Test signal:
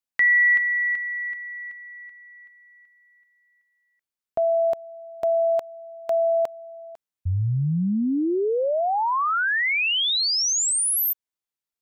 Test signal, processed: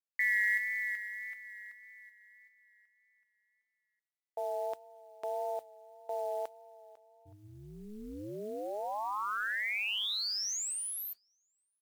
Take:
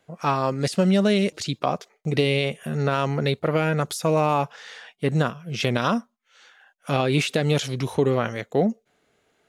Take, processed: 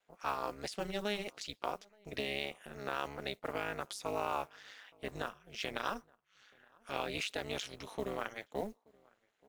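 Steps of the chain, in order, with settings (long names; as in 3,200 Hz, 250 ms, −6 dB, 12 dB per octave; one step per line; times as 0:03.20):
meter weighting curve A
slap from a distant wall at 150 metres, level −27 dB
noise that follows the level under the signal 25 dB
amplitude modulation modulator 210 Hz, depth 90%
pitch vibrato 1.7 Hz 31 cents
level −9 dB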